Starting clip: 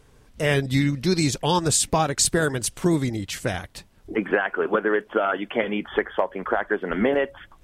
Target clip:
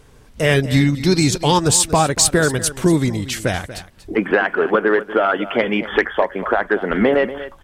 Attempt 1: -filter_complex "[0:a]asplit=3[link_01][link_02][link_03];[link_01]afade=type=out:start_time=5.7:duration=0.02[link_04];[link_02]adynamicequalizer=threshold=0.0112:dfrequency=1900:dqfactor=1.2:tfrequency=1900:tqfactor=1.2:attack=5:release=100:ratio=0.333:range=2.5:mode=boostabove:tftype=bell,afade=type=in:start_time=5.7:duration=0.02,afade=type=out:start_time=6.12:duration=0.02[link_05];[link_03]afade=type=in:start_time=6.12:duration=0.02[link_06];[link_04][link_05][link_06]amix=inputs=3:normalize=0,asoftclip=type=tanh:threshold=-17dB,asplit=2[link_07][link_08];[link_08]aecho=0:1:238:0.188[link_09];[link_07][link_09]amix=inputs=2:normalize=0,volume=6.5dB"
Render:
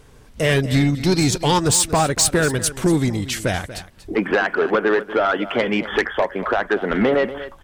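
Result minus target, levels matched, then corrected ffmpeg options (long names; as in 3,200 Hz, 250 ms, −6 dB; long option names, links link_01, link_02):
soft clipping: distortion +10 dB
-filter_complex "[0:a]asplit=3[link_01][link_02][link_03];[link_01]afade=type=out:start_time=5.7:duration=0.02[link_04];[link_02]adynamicequalizer=threshold=0.0112:dfrequency=1900:dqfactor=1.2:tfrequency=1900:tqfactor=1.2:attack=5:release=100:ratio=0.333:range=2.5:mode=boostabove:tftype=bell,afade=type=in:start_time=5.7:duration=0.02,afade=type=out:start_time=6.12:duration=0.02[link_05];[link_03]afade=type=in:start_time=6.12:duration=0.02[link_06];[link_04][link_05][link_06]amix=inputs=3:normalize=0,asoftclip=type=tanh:threshold=-9dB,asplit=2[link_07][link_08];[link_08]aecho=0:1:238:0.188[link_09];[link_07][link_09]amix=inputs=2:normalize=0,volume=6.5dB"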